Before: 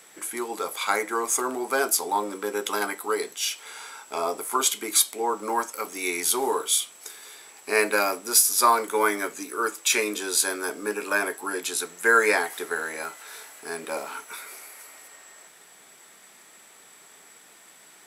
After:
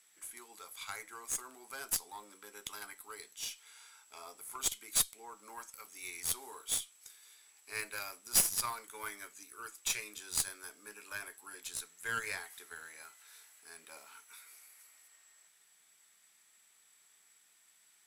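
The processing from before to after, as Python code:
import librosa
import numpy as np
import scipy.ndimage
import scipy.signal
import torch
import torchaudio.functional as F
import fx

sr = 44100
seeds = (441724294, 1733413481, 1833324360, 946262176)

y = fx.tone_stack(x, sr, knobs='5-5-5')
y = fx.cheby_harmonics(y, sr, harmonics=(2, 7), levels_db=(-6, -24), full_scale_db=-9.5)
y = F.gain(torch.from_numpy(y), -2.5).numpy()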